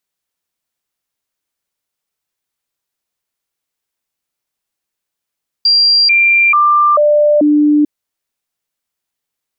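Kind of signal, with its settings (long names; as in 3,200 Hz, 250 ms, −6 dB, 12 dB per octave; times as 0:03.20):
stepped sweep 4,750 Hz down, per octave 1, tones 5, 0.44 s, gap 0.00 s −6.5 dBFS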